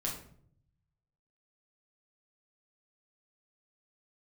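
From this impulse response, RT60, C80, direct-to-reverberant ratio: 0.60 s, 9.5 dB, -4.0 dB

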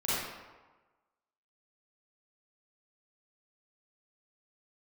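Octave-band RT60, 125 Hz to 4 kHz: 1.1, 1.1, 1.2, 1.3, 1.0, 0.75 s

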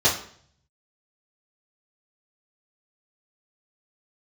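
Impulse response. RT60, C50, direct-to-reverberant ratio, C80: 0.55 s, 7.5 dB, -11.0 dB, 12.0 dB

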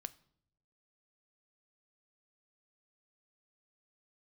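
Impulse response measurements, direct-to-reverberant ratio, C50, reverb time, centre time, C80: 13.5 dB, 20.5 dB, not exponential, 2 ms, 23.5 dB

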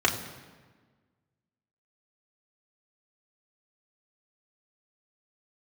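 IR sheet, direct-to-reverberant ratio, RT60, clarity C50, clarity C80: -1.5 dB, 1.4 s, 9.5 dB, 11.0 dB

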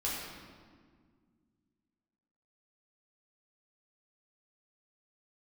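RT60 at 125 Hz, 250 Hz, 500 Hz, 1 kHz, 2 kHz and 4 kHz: 2.7, 2.8, 2.0, 1.7, 1.4, 1.2 s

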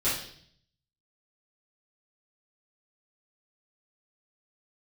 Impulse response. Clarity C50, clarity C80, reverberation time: 3.0 dB, 8.0 dB, 0.60 s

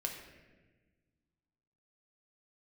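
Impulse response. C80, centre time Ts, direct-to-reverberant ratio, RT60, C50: 7.0 dB, 38 ms, 1.5 dB, 1.3 s, 5.5 dB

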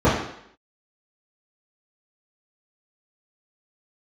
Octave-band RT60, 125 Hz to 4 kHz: 0.55, 0.70, 0.70, 0.70, 0.75, 0.70 s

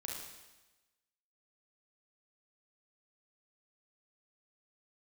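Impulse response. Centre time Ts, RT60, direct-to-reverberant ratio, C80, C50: 65 ms, 1.1 s, -2.5 dB, 4.0 dB, 1.0 dB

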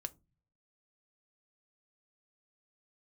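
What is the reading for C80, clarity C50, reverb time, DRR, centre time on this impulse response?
32.0 dB, 24.5 dB, 0.25 s, 10.5 dB, 2 ms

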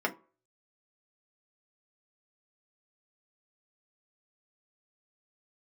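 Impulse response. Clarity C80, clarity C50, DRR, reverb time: 23.5 dB, 17.5 dB, 0.5 dB, 0.40 s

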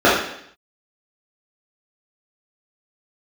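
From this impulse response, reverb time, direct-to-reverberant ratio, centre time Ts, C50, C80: 0.70 s, -9.0 dB, 52 ms, 2.0 dB, 6.0 dB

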